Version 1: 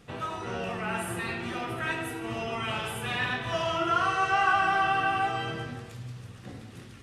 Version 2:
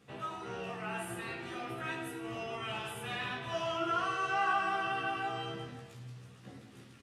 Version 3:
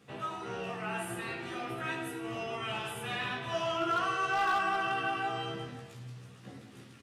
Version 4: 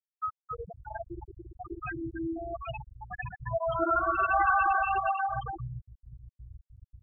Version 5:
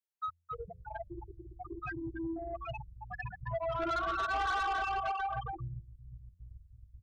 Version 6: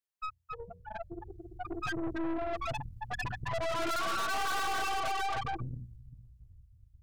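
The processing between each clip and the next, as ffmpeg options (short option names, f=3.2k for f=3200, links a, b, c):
-filter_complex "[0:a]highpass=100,asplit=2[a][b];[b]adelay=15,volume=-3dB[c];[a][c]amix=inputs=2:normalize=0,volume=-9dB"
-af "highpass=73,volume=26.5dB,asoftclip=hard,volume=-26.5dB,volume=2.5dB"
-filter_complex "[0:a]aeval=exprs='val(0)+0.00631*(sin(2*PI*60*n/s)+sin(2*PI*2*60*n/s)/2+sin(2*PI*3*60*n/s)/3+sin(2*PI*4*60*n/s)/4+sin(2*PI*5*60*n/s)/5)':c=same,asplit=2[a][b];[b]aecho=0:1:268|536|804|1072|1340|1608:0.562|0.253|0.114|0.0512|0.0231|0.0104[c];[a][c]amix=inputs=2:normalize=0,afftfilt=real='re*gte(hypot(re,im),0.1)':imag='im*gte(hypot(re,im),0.1)':win_size=1024:overlap=0.75,volume=4.5dB"
-filter_complex "[0:a]bandreject=f=84.76:t=h:w=4,bandreject=f=169.52:t=h:w=4,bandreject=f=254.28:t=h:w=4,bandreject=f=339.04:t=h:w=4,bandreject=f=423.8:t=h:w=4,bandreject=f=508.56:t=h:w=4,bandreject=f=593.32:t=h:w=4,acrossover=split=110[a][b];[a]aecho=1:1:387:0.376[c];[b]asoftclip=type=tanh:threshold=-26.5dB[d];[c][d]amix=inputs=2:normalize=0,volume=-2.5dB"
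-af "bandreject=f=60:t=h:w=6,bandreject=f=120:t=h:w=6,bandreject=f=180:t=h:w=6,bandreject=f=240:t=h:w=6,bandreject=f=300:t=h:w=6,bandreject=f=360:t=h:w=6,bandreject=f=420:t=h:w=6,bandreject=f=480:t=h:w=6,dynaudnorm=f=320:g=9:m=9dB,aeval=exprs='(tanh(56.2*val(0)+0.75)-tanh(0.75))/56.2':c=same,volume=3dB"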